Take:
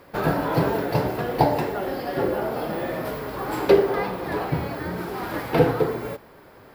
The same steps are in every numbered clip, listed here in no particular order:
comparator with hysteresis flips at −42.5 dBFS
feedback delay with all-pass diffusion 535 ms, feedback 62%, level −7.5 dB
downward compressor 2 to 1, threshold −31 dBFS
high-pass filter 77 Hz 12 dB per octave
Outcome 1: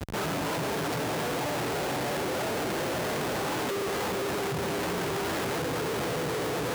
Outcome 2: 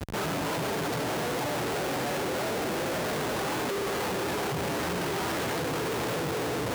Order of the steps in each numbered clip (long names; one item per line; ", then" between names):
feedback delay with all-pass diffusion, then downward compressor, then comparator with hysteresis, then high-pass filter
downward compressor, then feedback delay with all-pass diffusion, then comparator with hysteresis, then high-pass filter